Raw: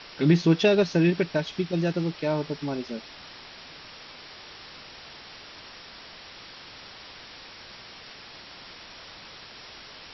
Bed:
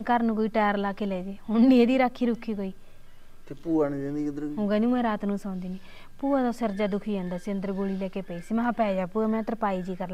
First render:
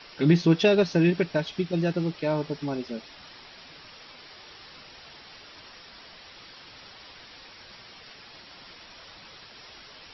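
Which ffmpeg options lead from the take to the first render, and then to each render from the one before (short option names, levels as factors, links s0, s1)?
-af "afftdn=nr=6:nf=-46"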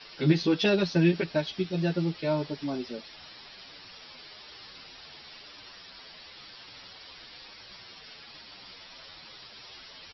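-filter_complex "[0:a]lowpass=f=4700:t=q:w=1.7,asplit=2[s0][s1];[s1]adelay=8.8,afreqshift=-1[s2];[s0][s2]amix=inputs=2:normalize=1"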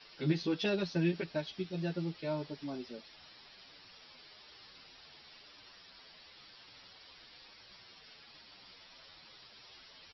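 -af "volume=0.376"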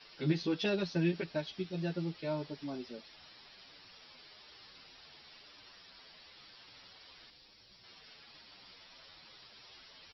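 -filter_complex "[0:a]asettb=1/sr,asplit=3[s0][s1][s2];[s0]atrim=end=7.304[s3];[s1]atrim=start=7.3:end=7.84,asetpts=PTS-STARTPTS,afade=t=in:d=0.004:c=qsin,afade=t=out:st=0.536:d=0.004:c=qsin,equalizer=f=1400:w=0.42:g=-8.5[s4];[s2]atrim=start=7.836[s5];[s3][s4]acrossfade=d=0.004:c1=hsin:c2=qsin[s6];[s6][s5]acrossfade=d=0.004:c1=qsin:c2=hsin"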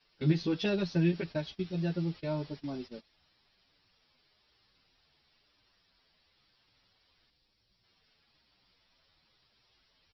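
-af "agate=range=0.178:threshold=0.00562:ratio=16:detection=peak,lowshelf=f=150:g=11.5"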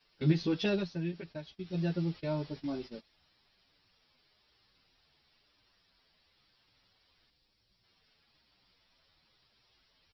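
-filter_complex "[0:a]asettb=1/sr,asplit=3[s0][s1][s2];[s0]atrim=end=2.544[s3];[s1]atrim=start=2.54:end=2.95,asetpts=PTS-STARTPTS,afade=t=in:d=0.004:c=qsin,afade=t=out:st=0.406:d=0.004:c=qsin,asplit=2[s4][s5];[s5]adelay=18,volume=0.501[s6];[s4][s6]amix=inputs=2:normalize=0,atrim=end_sample=18081[s7];[s2]atrim=start=2.946[s8];[s3][s7]acrossfade=d=0.004:c1=hsin:c2=qsin[s9];[s9][s8]acrossfade=d=0.004:c1=qsin:c2=hsin,asplit=3[s10][s11][s12];[s10]atrim=end=0.97,asetpts=PTS-STARTPTS,afade=t=out:st=0.77:d=0.2:c=qua:silence=0.375837[s13];[s11]atrim=start=0.97:end=1.55,asetpts=PTS-STARTPTS,volume=0.376[s14];[s12]atrim=start=1.55,asetpts=PTS-STARTPTS,afade=t=in:d=0.2:c=qua:silence=0.375837[s15];[s13][s14][s15]concat=n=3:v=0:a=1"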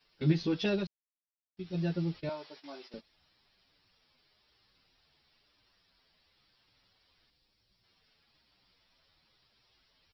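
-filter_complex "[0:a]asettb=1/sr,asplit=3[s0][s1][s2];[s0]atrim=end=2.294[s3];[s1]atrim=start=2.29:end=2.94,asetpts=PTS-STARTPTS,afade=t=in:d=0.004:c=qsin,afade=t=out:st=0.646:d=0.004:c=qsin,highpass=640[s4];[s2]atrim=start=2.936[s5];[s3][s4]acrossfade=d=0.004:c1=hsin:c2=qsin[s6];[s6][s5]acrossfade=d=0.004:c1=qsin:c2=hsin,asplit=3[s7][s8][s9];[s7]atrim=end=0.87,asetpts=PTS-STARTPTS,afade=t=out:st=0.866:d=0.004:c=hsin[s10];[s8]atrim=start=0.87:end=1.57,asetpts=PTS-STARTPTS,volume=0[s11];[s9]atrim=start=1.57,asetpts=PTS-STARTPTS,afade=t=in:d=0.004:c=hsin[s12];[s10][s11][s12]concat=n=3:v=0:a=1"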